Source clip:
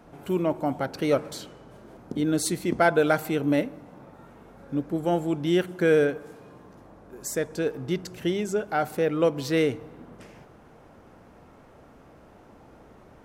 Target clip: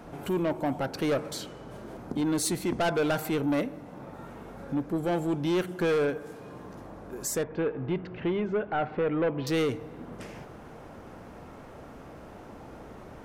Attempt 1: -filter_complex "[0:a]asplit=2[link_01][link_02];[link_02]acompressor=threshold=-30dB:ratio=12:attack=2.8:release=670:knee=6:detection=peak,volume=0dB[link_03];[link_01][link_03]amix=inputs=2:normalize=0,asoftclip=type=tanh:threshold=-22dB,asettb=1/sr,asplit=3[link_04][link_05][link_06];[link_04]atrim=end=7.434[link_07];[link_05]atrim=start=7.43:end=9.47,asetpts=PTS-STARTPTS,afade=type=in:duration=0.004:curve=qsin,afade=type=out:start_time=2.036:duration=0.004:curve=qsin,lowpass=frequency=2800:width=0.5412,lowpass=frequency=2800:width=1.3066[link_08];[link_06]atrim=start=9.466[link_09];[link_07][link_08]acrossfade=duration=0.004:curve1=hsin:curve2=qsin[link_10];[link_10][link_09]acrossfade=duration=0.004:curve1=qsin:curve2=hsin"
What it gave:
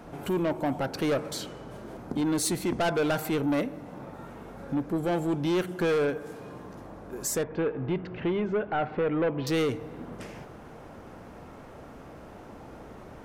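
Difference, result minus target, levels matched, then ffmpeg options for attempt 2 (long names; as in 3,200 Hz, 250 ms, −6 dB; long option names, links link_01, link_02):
downward compressor: peak gain reduction −7.5 dB
-filter_complex "[0:a]asplit=2[link_01][link_02];[link_02]acompressor=threshold=-38dB:ratio=12:attack=2.8:release=670:knee=6:detection=peak,volume=0dB[link_03];[link_01][link_03]amix=inputs=2:normalize=0,asoftclip=type=tanh:threshold=-22dB,asettb=1/sr,asplit=3[link_04][link_05][link_06];[link_04]atrim=end=7.434[link_07];[link_05]atrim=start=7.43:end=9.47,asetpts=PTS-STARTPTS,afade=type=in:duration=0.004:curve=qsin,afade=type=out:start_time=2.036:duration=0.004:curve=qsin,lowpass=frequency=2800:width=0.5412,lowpass=frequency=2800:width=1.3066[link_08];[link_06]atrim=start=9.466[link_09];[link_07][link_08]acrossfade=duration=0.004:curve1=hsin:curve2=qsin[link_10];[link_10][link_09]acrossfade=duration=0.004:curve1=qsin:curve2=hsin"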